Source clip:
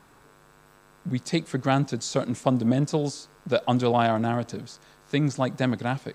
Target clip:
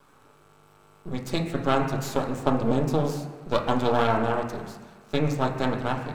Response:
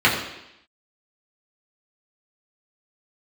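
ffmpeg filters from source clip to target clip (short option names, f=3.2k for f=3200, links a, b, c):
-filter_complex "[0:a]aeval=exprs='max(val(0),0)':c=same,bandreject=f=60:t=h:w=6,bandreject=f=120:t=h:w=6,bandreject=f=180:t=h:w=6,bandreject=f=240:t=h:w=6,bandreject=f=300:t=h:w=6,asplit=2[a][b];[1:a]atrim=start_sample=2205,asetrate=26460,aresample=44100[c];[b][c]afir=irnorm=-1:irlink=0,volume=-25dB[d];[a][d]amix=inputs=2:normalize=0"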